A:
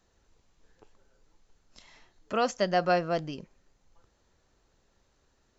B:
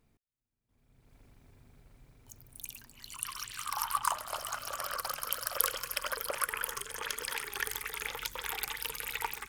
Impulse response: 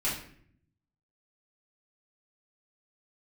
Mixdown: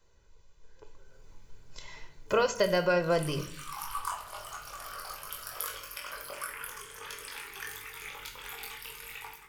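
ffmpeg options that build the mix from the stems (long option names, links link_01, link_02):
-filter_complex "[0:a]aecho=1:1:2:0.77,acompressor=threshold=-27dB:ratio=6,volume=-3dB,asplit=2[link_01][link_02];[link_02]volume=-13dB[link_03];[1:a]flanger=delay=20:depth=2:speed=0.52,volume=-14.5dB,asplit=2[link_04][link_05];[link_05]volume=-4dB[link_06];[2:a]atrim=start_sample=2205[link_07];[link_03][link_06]amix=inputs=2:normalize=0[link_08];[link_08][link_07]afir=irnorm=-1:irlink=0[link_09];[link_01][link_04][link_09]amix=inputs=3:normalize=0,dynaudnorm=framelen=650:gausssize=3:maxgain=7dB"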